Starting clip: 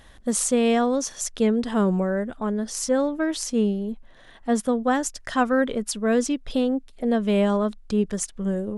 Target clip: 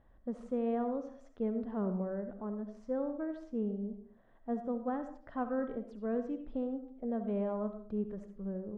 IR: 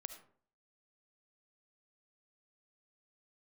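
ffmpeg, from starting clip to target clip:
-filter_complex "[0:a]lowpass=1000[s0];[1:a]atrim=start_sample=2205[s1];[s0][s1]afir=irnorm=-1:irlink=0,volume=0.376"

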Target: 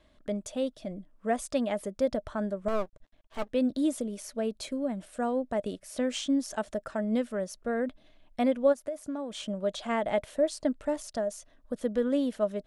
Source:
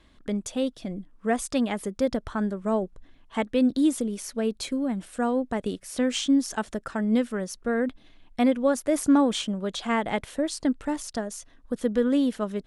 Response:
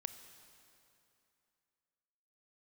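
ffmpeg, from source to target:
-filter_complex "[0:a]equalizer=f=610:t=o:w=0.26:g=13.5,asettb=1/sr,asplit=3[s0][s1][s2];[s0]atrim=end=2.684[s3];[s1]atrim=start=2.68:end=3.49,asetpts=PTS-STARTPTS,afade=t=in:d=0.004:c=qsin,afade=t=out:st=0.806:d=0.004:c=qsin,aeval=exprs='max(val(0),0)':c=same[s4];[s2]atrim=start=3.486[s5];[s3][s4]acrossfade=d=0.004:c1=hsin:c2=qsin[s6];[s6][s5]acrossfade=d=0.004:c1=qsin:c2=hsin,asplit=3[s7][s8][s9];[s7]afade=t=out:st=8.72:d=0.02[s10];[s8]acompressor=threshold=0.0501:ratio=12,afade=t=in:st=8.72:d=0.02,afade=t=out:st=9.42:d=0.02[s11];[s9]afade=t=in:st=9.42:d=0.02[s12];[s10][s11][s12]amix=inputs=3:normalize=0,volume=0.501"

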